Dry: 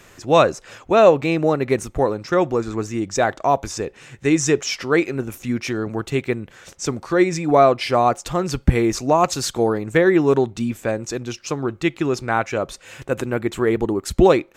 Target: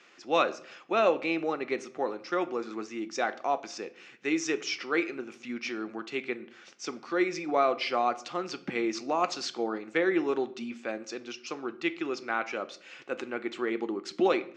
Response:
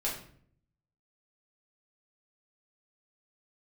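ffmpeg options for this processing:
-filter_complex "[0:a]highpass=frequency=280:width=0.5412,highpass=frequency=280:width=1.3066,equalizer=frequency=280:width_type=q:width=4:gain=-6,equalizer=frequency=430:width_type=q:width=4:gain=-9,equalizer=frequency=620:width_type=q:width=4:gain=-9,equalizer=frequency=960:width_type=q:width=4:gain=-8,equalizer=frequency=1700:width_type=q:width=4:gain=-5,equalizer=frequency=3800:width_type=q:width=4:gain=-4,lowpass=frequency=5100:width=0.5412,lowpass=frequency=5100:width=1.3066,asplit=2[link_01][link_02];[1:a]atrim=start_sample=2205[link_03];[link_02][link_03]afir=irnorm=-1:irlink=0,volume=-14dB[link_04];[link_01][link_04]amix=inputs=2:normalize=0,volume=-6dB"

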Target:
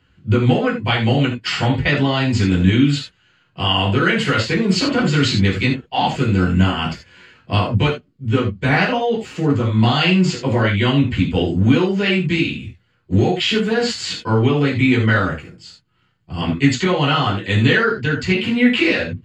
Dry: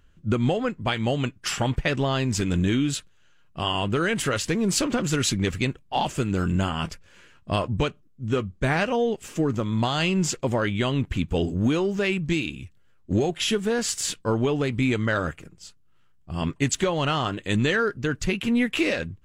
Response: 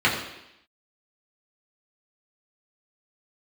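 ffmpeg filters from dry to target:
-filter_complex "[0:a]equalizer=frequency=5000:width=1.9:gain=6.5[link_01];[1:a]atrim=start_sample=2205,atrim=end_sample=4410[link_02];[link_01][link_02]afir=irnorm=-1:irlink=0,acrossover=split=7500[link_03][link_04];[link_04]acompressor=threshold=-42dB:ratio=4:attack=1:release=60[link_05];[link_03][link_05]amix=inputs=2:normalize=0,volume=-10dB"

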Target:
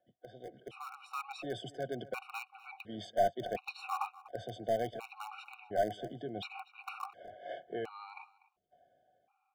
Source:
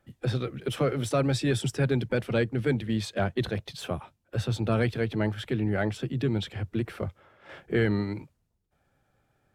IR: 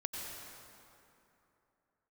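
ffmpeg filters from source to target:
-filter_complex "[0:a]areverse,acompressor=threshold=-36dB:ratio=8,areverse,asplit=3[link_01][link_02][link_03];[link_01]bandpass=frequency=730:width_type=q:width=8,volume=0dB[link_04];[link_02]bandpass=frequency=1090:width_type=q:width=8,volume=-6dB[link_05];[link_03]bandpass=frequency=2440:width_type=q:width=8,volume=-9dB[link_06];[link_04][link_05][link_06]amix=inputs=3:normalize=0,asplit=2[link_07][link_08];[link_08]acrusher=bits=5:dc=4:mix=0:aa=0.000001,volume=-11dB[link_09];[link_07][link_09]amix=inputs=2:normalize=0,dynaudnorm=framelen=210:gausssize=9:maxgain=12dB,asplit=2[link_10][link_11];[link_11]adelay=244.9,volume=-18dB,highshelf=frequency=4000:gain=-5.51[link_12];[link_10][link_12]amix=inputs=2:normalize=0,afftfilt=real='re*gt(sin(2*PI*0.7*pts/sr)*(1-2*mod(floor(b*sr/1024/740),2)),0)':imag='im*gt(sin(2*PI*0.7*pts/sr)*(1-2*mod(floor(b*sr/1024/740),2)),0)':win_size=1024:overlap=0.75,volume=8dB"

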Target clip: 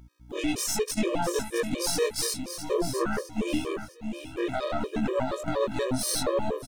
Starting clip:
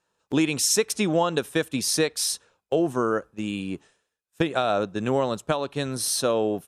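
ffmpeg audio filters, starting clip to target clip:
ffmpeg -i in.wav -filter_complex "[0:a]afftfilt=real='re':imag='-im':win_size=2048:overlap=0.75,agate=range=-23dB:threshold=-59dB:ratio=16:detection=peak,equalizer=frequency=420:width=0.32:gain=4.5,dynaudnorm=framelen=320:gausssize=3:maxgain=13dB,alimiter=limit=-11.5dB:level=0:latency=1:release=89,aeval=exprs='val(0)+0.00631*(sin(2*PI*60*n/s)+sin(2*PI*2*60*n/s)/2+sin(2*PI*3*60*n/s)/3+sin(2*PI*4*60*n/s)/4+sin(2*PI*5*60*n/s)/5)':channel_layout=same,acrusher=bits=9:mix=0:aa=0.000001,aeval=exprs='(tanh(6.31*val(0)+0.75)-tanh(0.75))/6.31':channel_layout=same,asplit=2[link_01][link_02];[link_02]aecho=0:1:659|1318|1977|2636:0.355|0.131|0.0486|0.018[link_03];[link_01][link_03]amix=inputs=2:normalize=0,afftfilt=real='re*gt(sin(2*PI*4.2*pts/sr)*(1-2*mod(floor(b*sr/1024/320),2)),0)':imag='im*gt(sin(2*PI*4.2*pts/sr)*(1-2*mod(floor(b*sr/1024/320),2)),0)':win_size=1024:overlap=0.75" out.wav

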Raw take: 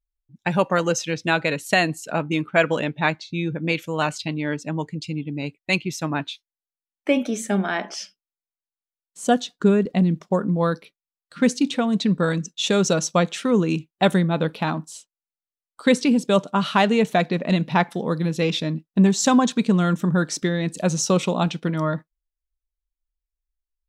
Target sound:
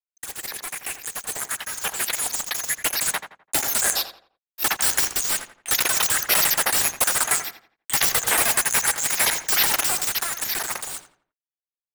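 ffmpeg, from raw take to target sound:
ffmpeg -i in.wav -filter_complex "[0:a]afftfilt=real='real(if(lt(b,272),68*(eq(floor(b/68),0)*2+eq(floor(b/68),1)*3+eq(floor(b/68),2)*0+eq(floor(b/68),3)*1)+mod(b,68),b),0)':imag='imag(if(lt(b,272),68*(eq(floor(b/68),0)*2+eq(floor(b/68),1)*3+eq(floor(b/68),2)*0+eq(floor(b/68),3)*1)+mod(b,68),b),0)':win_size=2048:overlap=0.75,alimiter=limit=-8.5dB:level=0:latency=1:release=321,highpass=220,equalizer=frequency=390:width_type=q:width=4:gain=7,equalizer=frequency=830:width_type=q:width=4:gain=7,equalizer=frequency=1900:width_type=q:width=4:gain=4,lowpass=frequency=7300:width=0.5412,lowpass=frequency=7300:width=1.3066,acrusher=bits=2:mode=log:mix=0:aa=0.000001,afftfilt=real='re*lt(hypot(re,im),0.141)':imag='im*lt(hypot(re,im),0.141)':win_size=1024:overlap=0.75,dynaudnorm=framelen=250:gausssize=31:maxgain=11.5dB,aeval=exprs='sgn(val(0))*max(abs(val(0))-0.00891,0)':channel_layout=same,equalizer=frequency=2900:width_type=o:width=1.4:gain=-2.5,asetrate=88200,aresample=44100,asplit=2[link_01][link_02];[link_02]adelay=85,lowpass=frequency=2600:poles=1,volume=-9dB,asplit=2[link_03][link_04];[link_04]adelay=85,lowpass=frequency=2600:poles=1,volume=0.35,asplit=2[link_05][link_06];[link_06]adelay=85,lowpass=frequency=2600:poles=1,volume=0.35,asplit=2[link_07][link_08];[link_08]adelay=85,lowpass=frequency=2600:poles=1,volume=0.35[link_09];[link_01][link_03][link_05][link_07][link_09]amix=inputs=5:normalize=0,volume=3.5dB" out.wav

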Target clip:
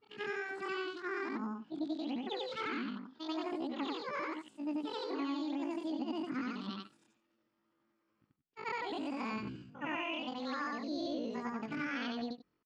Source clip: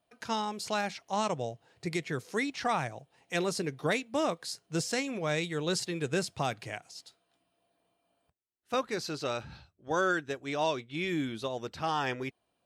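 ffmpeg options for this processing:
ffmpeg -i in.wav -af "afftfilt=real='re':imag='-im':win_size=8192:overlap=0.75,lowpass=frequency=2300:width=0.5412,lowpass=frequency=2300:width=1.3066,lowshelf=frequency=230:width_type=q:width=1.5:gain=9,acompressor=threshold=-35dB:ratio=6,asetrate=80880,aresample=44100,atempo=0.545254,volume=1dB" out.wav

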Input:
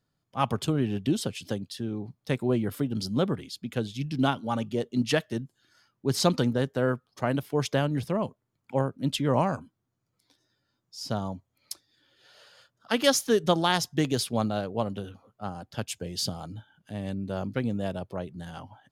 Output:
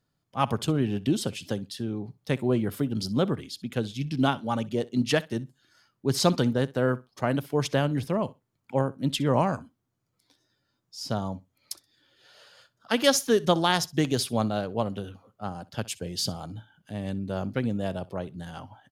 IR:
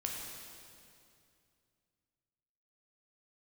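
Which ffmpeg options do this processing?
-af "aecho=1:1:63|126:0.0891|0.0143,volume=1dB"

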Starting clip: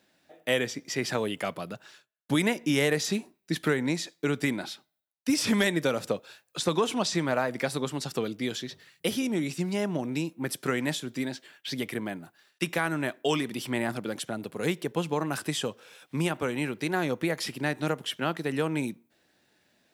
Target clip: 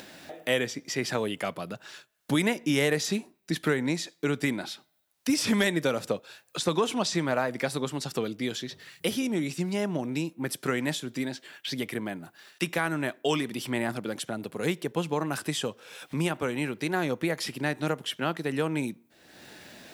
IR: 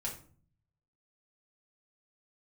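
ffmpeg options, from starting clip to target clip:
-af "acompressor=mode=upward:threshold=-31dB:ratio=2.5"

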